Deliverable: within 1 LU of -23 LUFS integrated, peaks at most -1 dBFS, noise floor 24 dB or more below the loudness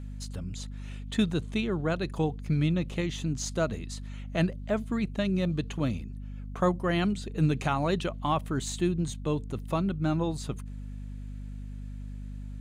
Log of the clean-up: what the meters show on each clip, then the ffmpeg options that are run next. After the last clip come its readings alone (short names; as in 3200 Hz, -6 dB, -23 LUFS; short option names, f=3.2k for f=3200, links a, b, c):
hum 50 Hz; harmonics up to 250 Hz; hum level -37 dBFS; loudness -30.0 LUFS; peak -14.0 dBFS; loudness target -23.0 LUFS
-> -af "bandreject=f=50:t=h:w=6,bandreject=f=100:t=h:w=6,bandreject=f=150:t=h:w=6,bandreject=f=200:t=h:w=6,bandreject=f=250:t=h:w=6"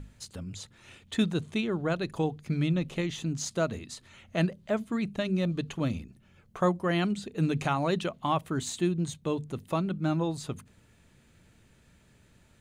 hum none; loudness -30.5 LUFS; peak -14.5 dBFS; loudness target -23.0 LUFS
-> -af "volume=7.5dB"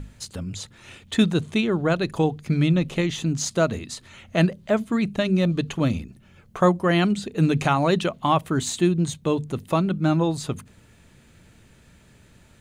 loudness -23.0 LUFS; peak -7.0 dBFS; noise floor -54 dBFS